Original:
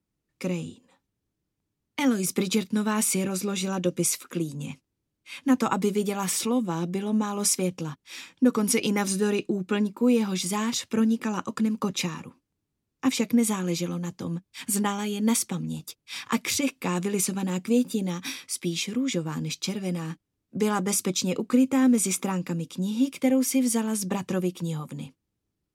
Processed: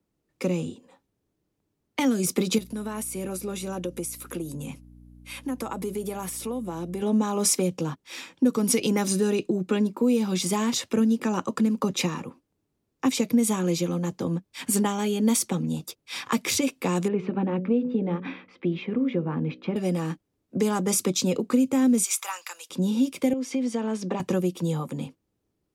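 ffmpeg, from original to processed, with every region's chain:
-filter_complex "[0:a]asettb=1/sr,asplit=3[a][b][c];[a]atrim=end=2.584[d];[b]atrim=start=2.58:end=7.02,asetpts=PTS-STARTPTS,afade=t=in:d=0.004:c=qsin,afade=t=out:st=4.436:d=0.004:c=qsin,equalizer=f=11k:w=1.6:g=13.5,acompressor=threshold=-35dB:ratio=4:attack=3.2:release=140:knee=1:detection=peak,aeval=exprs='val(0)+0.00316*(sin(2*PI*60*n/s)+sin(2*PI*2*60*n/s)/2+sin(2*PI*3*60*n/s)/3+sin(2*PI*4*60*n/s)/4+sin(2*PI*5*60*n/s)/5)':c=same[e];[c]atrim=start=7.016[f];[d][e]acrossfade=d=0.004:c1=hsin:c2=qsin[g];[g][f]acrossfade=d=0.004:c1=qsin:c2=hsin,asettb=1/sr,asplit=3[h][i][j];[h]atrim=end=17.084[k];[i]atrim=start=17.08:end=19.76,asetpts=PTS-STARTPTS,afade=t=in:d=0.004:c=qsin,afade=t=out:st=2.676:d=0.004:c=qsin,lowpass=f=2.8k:w=0.5412,lowpass=f=2.8k:w=1.3066,highshelf=f=2.1k:g=-8,bandreject=f=62.04:t=h:w=4,bandreject=f=124.08:t=h:w=4,bandreject=f=186.12:t=h:w=4,bandreject=f=248.16:t=h:w=4,bandreject=f=310.2:t=h:w=4,bandreject=f=372.24:t=h:w=4,bandreject=f=434.28:t=h:w=4,bandreject=f=496.32:t=h:w=4,bandreject=f=558.36:t=h:w=4[l];[j]atrim=start=19.756[m];[k][l]acrossfade=d=0.004:c1=hsin:c2=qsin[n];[n][m]acrossfade=d=0.004:c1=qsin:c2=hsin,asettb=1/sr,asplit=3[o][p][q];[o]atrim=end=22.044[r];[p]atrim=start=22.04:end=22.7,asetpts=PTS-STARTPTS,afade=t=in:d=0.004:c=qsin,afade=t=out:st=0.656:d=0.004:c=qsin,highpass=f=940:w=0.5412,highpass=f=940:w=1.3066,highshelf=f=2.7k:g=9.5,acompressor=threshold=-36dB:ratio=1.5:attack=3.2:release=140:knee=1:detection=peak[s];[q]atrim=start=22.696[t];[r][s]acrossfade=d=0.004:c1=hsin:c2=qsin[u];[u][t]acrossfade=d=0.004:c1=qsin:c2=hsin,asettb=1/sr,asplit=3[v][w][x];[v]atrim=end=23.334[y];[w]atrim=start=23.33:end=24.2,asetpts=PTS-STARTPTS,afade=t=in:d=0.004:c=qsin,afade=t=out:st=0.866:d=0.004:c=qsin,acompressor=threshold=-27dB:ratio=3:attack=3.2:release=140:knee=1:detection=peak,highpass=180,lowpass=4.5k[z];[x]atrim=start=24.196[aa];[y][z]acrossfade=d=0.004:c1=hsin:c2=qsin[ab];[ab][aa]acrossfade=d=0.004:c1=qsin:c2=hsin,equalizer=f=510:t=o:w=2.1:g=8,acrossover=split=200|3000[ac][ad][ae];[ad]acompressor=threshold=-26dB:ratio=4[af];[ac][af][ae]amix=inputs=3:normalize=0,volume=1dB"

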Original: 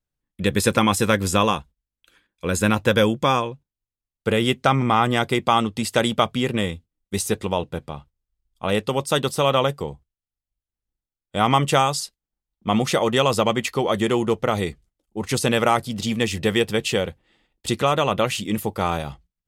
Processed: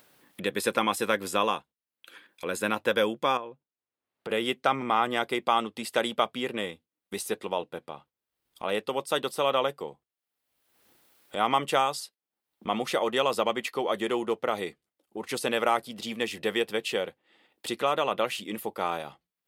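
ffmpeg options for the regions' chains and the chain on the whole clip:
-filter_complex "[0:a]asettb=1/sr,asplit=3[a][b][c];[a]atrim=end=3.374[d];[b]atrim=start=3.37:end=4.3,asetpts=PTS-STARTPTS,afade=t=in:d=0.004:c=qsin,afade=t=out:st=0.926:d=0.004:c=qsin,lowpass=f=1.5k:p=1,acompressor=threshold=-30dB:ratio=2:attack=3.2:release=140:knee=1:detection=peak[e];[c]atrim=start=4.296[f];[d][e]acrossfade=d=0.004:c1=hsin:c2=qsin[g];[g][f]acrossfade=d=0.004:c1=qsin:c2=hsin,highpass=320,equalizer=f=6.7k:t=o:w=0.88:g=-7,acompressor=mode=upward:threshold=-28dB:ratio=2.5,volume=-5.5dB"

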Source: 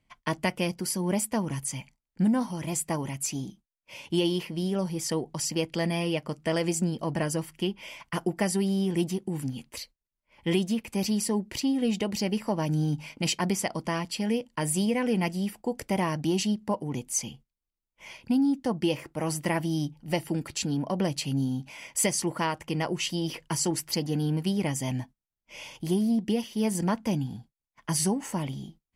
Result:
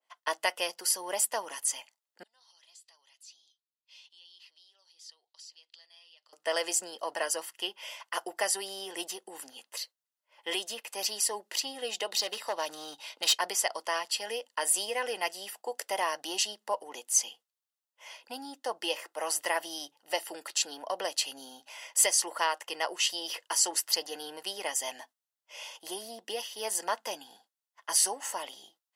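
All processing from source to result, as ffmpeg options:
-filter_complex "[0:a]asettb=1/sr,asplit=3[a][b][c];[a]atrim=end=2.234[d];[b]atrim=start=2.23:end=6.33,asetpts=PTS-STARTPTS,afade=t=in:d=0.004:c=qsin,afade=t=out:st=4.096:d=0.004:c=qsin,acompressor=threshold=-36dB:ratio=6:attack=3.2:release=140:knee=1:detection=peak,bandpass=f=4.1k:t=q:w=3.5[e];[c]atrim=start=6.326[f];[d][e]acrossfade=d=0.004:c1=hsin:c2=qsin[g];[g][f]acrossfade=d=0.004:c1=qsin:c2=hsin,asettb=1/sr,asplit=3[h][i][j];[h]atrim=end=12.074[k];[i]atrim=start=12.07:end=13.35,asetpts=PTS-STARTPTS,afade=t=in:d=0.004:c=qsin,afade=t=out:st=1.276:d=0.004:c=qsin,equalizer=f=3.8k:w=5.4:g=12,volume=22dB,asoftclip=hard,volume=-22dB[l];[j]atrim=start=13.346[m];[k][l]acrossfade=d=0.004:c1=hsin:c2=qsin[n];[n][m]acrossfade=d=0.004:c1=qsin:c2=hsin,highpass=f=530:w=0.5412,highpass=f=530:w=1.3066,bandreject=f=2.3k:w=5.1,adynamicequalizer=threshold=0.00501:dfrequency=1500:dqfactor=0.7:tfrequency=1500:tqfactor=0.7:attack=5:release=100:ratio=0.375:range=2:mode=boostabove:tftype=highshelf"

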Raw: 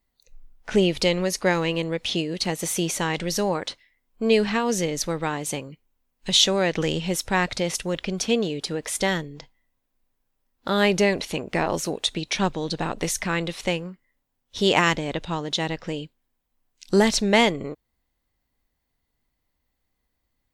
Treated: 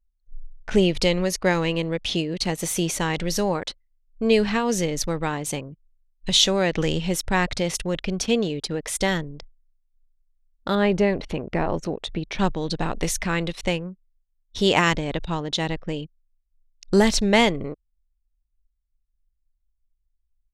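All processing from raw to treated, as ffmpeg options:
-filter_complex "[0:a]asettb=1/sr,asplit=3[a][b][c];[a]atrim=end=10.754[d];[b]atrim=start=10.75:end=12.39,asetpts=PTS-STARTPTS,afade=t=in:d=0.004:c=qsin,afade=t=out:st=1.636:d=0.004:c=qsin,lowpass=f=1.4k:p=1,acompressor=mode=upward:threshold=-28dB:ratio=2.5:attack=3.2:release=140:knee=2.83:detection=peak[e];[c]atrim=start=12.386[f];[d][e]acrossfade=d=0.004:c1=hsin:c2=qsin[g];[g][f]acrossfade=d=0.004:c1=qsin:c2=hsin,anlmdn=1,lowshelf=f=81:g=11.5"

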